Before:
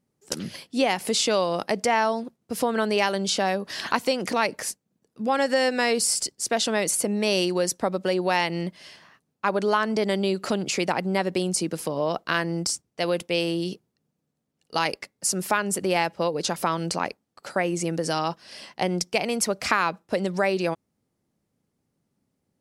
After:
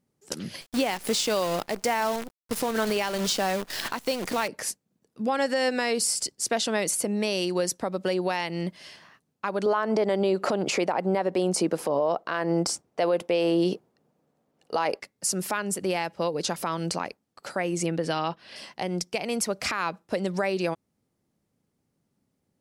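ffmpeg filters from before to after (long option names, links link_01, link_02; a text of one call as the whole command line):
ffmpeg -i in.wav -filter_complex "[0:a]asettb=1/sr,asplit=3[link_01][link_02][link_03];[link_01]atrim=end=0.614[link_04];[link_02]atrim=start=0.61:end=4.48,asetpts=PTS-STARTPTS,afade=type=in:duration=0.004:curve=qsin,afade=type=out:start_time=3.866:duration=0.004:curve=qsin,acrusher=bits=6:dc=4:mix=0:aa=0.000001[link_05];[link_03]atrim=start=4.476[link_06];[link_04][link_05]acrossfade=duration=0.004:curve1=hsin:curve2=qsin[link_07];[link_07][link_06]acrossfade=duration=0.004:curve1=qsin:curve2=hsin,asettb=1/sr,asplit=3[link_08][link_09][link_10];[link_08]atrim=end=9.664[link_11];[link_09]atrim=start=9.66:end=15,asetpts=PTS-STARTPTS,afade=type=in:duration=0.004:curve=qsin,afade=type=out:start_time=5.336:duration=0.004:curve=qsin,equalizer=frequency=690:width=0.42:gain=14.5[link_12];[link_10]atrim=start=14.996[link_13];[link_11][link_12]acrossfade=duration=0.004:curve1=hsin:curve2=qsin[link_14];[link_14][link_13]acrossfade=duration=0.004:curve1=qsin:curve2=hsin,asettb=1/sr,asplit=3[link_15][link_16][link_17];[link_15]atrim=end=17.864[link_18];[link_16]atrim=start=17.86:end=18.56,asetpts=PTS-STARTPTS,afade=type=in:duration=0.004:curve=qsin,afade=type=out:start_time=0.696:duration=0.004:curve=qsin,highshelf=frequency=4600:width_type=q:width=1.5:gain=-9[link_19];[link_17]atrim=start=18.556[link_20];[link_18][link_19]acrossfade=duration=0.004:curve1=hsin:curve2=qsin[link_21];[link_21][link_20]acrossfade=duration=0.004:curve1=qsin:curve2=hsin,alimiter=limit=-15.5dB:level=0:latency=1:release=239" out.wav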